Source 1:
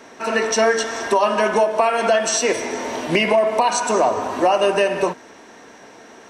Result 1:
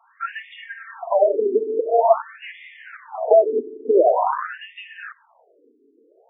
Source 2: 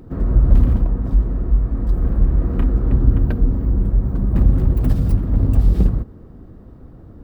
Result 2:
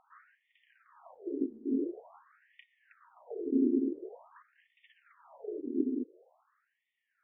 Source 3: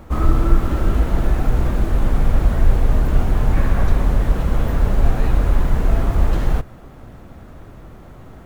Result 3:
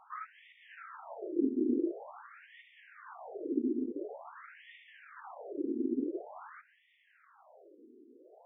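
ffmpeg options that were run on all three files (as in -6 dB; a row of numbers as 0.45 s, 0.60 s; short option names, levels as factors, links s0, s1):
-af "acompressor=threshold=0.158:ratio=6,afwtdn=0.0891,afftfilt=real='re*between(b*sr/1024,310*pow(2600/310,0.5+0.5*sin(2*PI*0.47*pts/sr))/1.41,310*pow(2600/310,0.5+0.5*sin(2*PI*0.47*pts/sr))*1.41)':imag='im*between(b*sr/1024,310*pow(2600/310,0.5+0.5*sin(2*PI*0.47*pts/sr))/1.41,310*pow(2600/310,0.5+0.5*sin(2*PI*0.47*pts/sr))*1.41)':win_size=1024:overlap=0.75,volume=2.66"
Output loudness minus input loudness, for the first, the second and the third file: -1.0 LU, -15.5 LU, -16.0 LU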